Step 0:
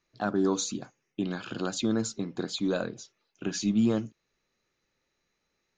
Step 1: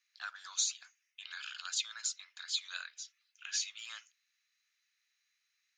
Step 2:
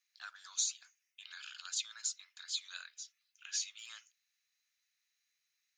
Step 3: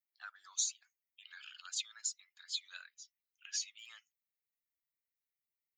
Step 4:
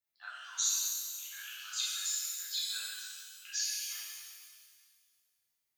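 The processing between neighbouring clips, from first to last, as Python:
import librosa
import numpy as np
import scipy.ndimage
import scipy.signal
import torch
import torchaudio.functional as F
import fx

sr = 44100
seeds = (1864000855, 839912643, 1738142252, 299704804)

y1 = scipy.signal.sosfilt(scipy.signal.cheby2(4, 70, 370.0, 'highpass', fs=sr, output='sos'), x)
y1 = y1 * librosa.db_to_amplitude(1.0)
y2 = fx.high_shelf(y1, sr, hz=5300.0, db=9.0)
y2 = y2 * librosa.db_to_amplitude(-6.5)
y3 = fx.bin_expand(y2, sr, power=1.5)
y3 = y3 * librosa.db_to_amplitude(1.0)
y4 = fx.rev_shimmer(y3, sr, seeds[0], rt60_s=1.9, semitones=12, shimmer_db=-8, drr_db=-8.5)
y4 = y4 * librosa.db_to_amplitude(-2.5)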